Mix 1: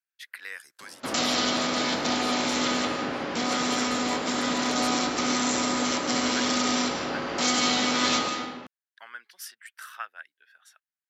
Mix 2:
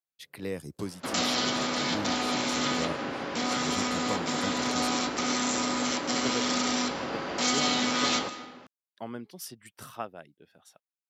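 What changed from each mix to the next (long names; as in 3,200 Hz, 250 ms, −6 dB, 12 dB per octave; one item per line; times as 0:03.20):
speech: remove high-pass with resonance 1,600 Hz, resonance Q 4.3
background: send −10.0 dB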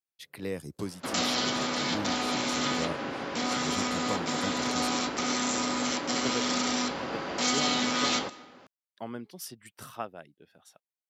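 background: send −8.0 dB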